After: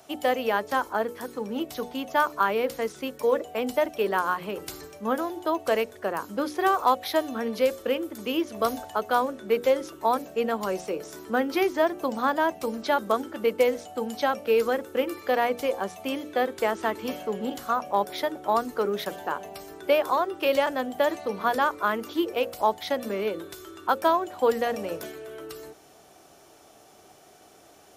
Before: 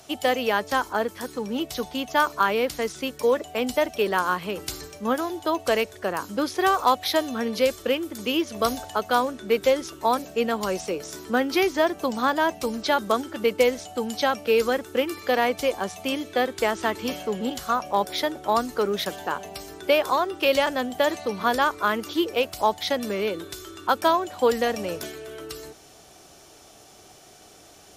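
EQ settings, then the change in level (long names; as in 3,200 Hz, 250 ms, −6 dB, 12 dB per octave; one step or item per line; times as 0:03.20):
low-shelf EQ 120 Hz −11 dB
parametric band 5,300 Hz −8 dB 2.6 octaves
mains-hum notches 60/120/180/240/300/360/420/480/540 Hz
0.0 dB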